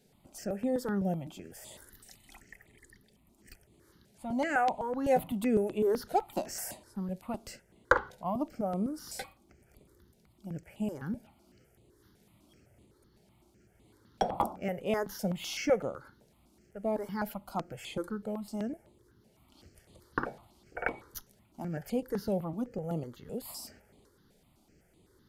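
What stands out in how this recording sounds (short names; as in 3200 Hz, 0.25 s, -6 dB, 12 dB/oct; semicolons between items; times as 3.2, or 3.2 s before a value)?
notches that jump at a steady rate 7.9 Hz 310–5500 Hz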